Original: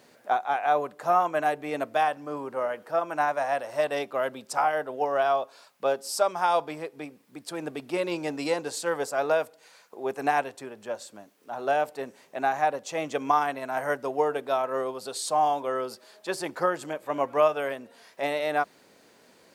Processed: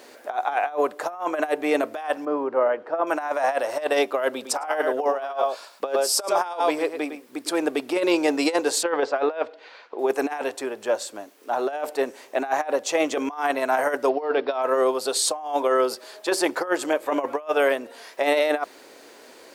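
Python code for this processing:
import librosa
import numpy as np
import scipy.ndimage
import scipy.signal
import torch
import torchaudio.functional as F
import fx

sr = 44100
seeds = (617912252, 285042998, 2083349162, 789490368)

y = fx.spacing_loss(x, sr, db_at_10k=31, at=(2.25, 3.07))
y = fx.echo_single(y, sr, ms=107, db=-9.5, at=(4.42, 7.57), fade=0.02)
y = fx.lowpass(y, sr, hz=4000.0, slope=24, at=(8.83, 9.99))
y = fx.resample_bad(y, sr, factor=4, down='none', up='filtered', at=(14.09, 14.62))
y = fx.peak_eq(y, sr, hz=150.0, db=-12.0, octaves=0.67)
y = fx.over_compress(y, sr, threshold_db=-29.0, ratio=-0.5)
y = fx.low_shelf_res(y, sr, hz=230.0, db=-7.0, q=1.5)
y = y * librosa.db_to_amplitude(6.5)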